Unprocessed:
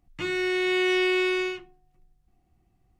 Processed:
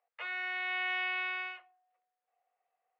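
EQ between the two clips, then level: rippled Chebyshev high-pass 460 Hz, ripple 3 dB; distance through air 470 m; 0.0 dB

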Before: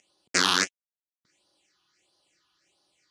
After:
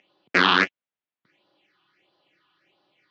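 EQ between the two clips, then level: high-pass 110 Hz 24 dB/octave; low-pass 3.2 kHz 24 dB/octave; +7.0 dB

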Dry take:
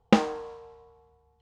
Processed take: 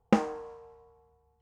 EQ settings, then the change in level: peaking EQ 3.7 kHz -10 dB 0.96 oct; -3.5 dB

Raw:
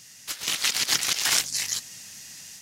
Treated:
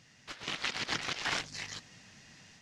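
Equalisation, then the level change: tape spacing loss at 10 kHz 30 dB; 0.0 dB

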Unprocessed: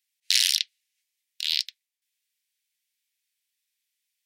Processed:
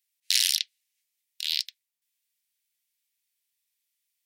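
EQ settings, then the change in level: treble shelf 8.9 kHz +8 dB; -3.5 dB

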